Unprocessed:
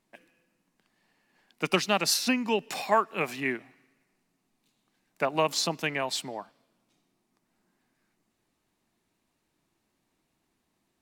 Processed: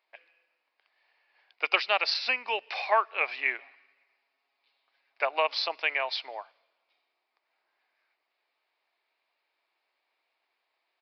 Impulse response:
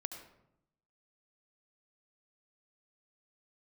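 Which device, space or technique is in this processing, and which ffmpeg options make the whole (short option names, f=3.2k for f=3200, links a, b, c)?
musical greeting card: -filter_complex "[0:a]asettb=1/sr,asplit=3[a][b][c];[a]atrim=end=3.584[d];[b]atrim=start=3.58:end=5.23,asetpts=PTS-STARTPTS,afade=t=in:d=0.004:c=qsin,afade=t=out:st=1.646:d=0.004:c=qsin,aecho=1:1:7.3:0.74,atrim=end_sample=72765[e];[c]atrim=start=5.226[f];[d][e]acrossfade=d=0.004:c1=hsin:c2=qsin[g];[g][f]acrossfade=d=0.004:c1=qsin:c2=hsin,aresample=11025,aresample=44100,highpass=f=540:w=0.5412,highpass=f=540:w=1.3066,equalizer=f=2.3k:t=o:w=0.3:g=7"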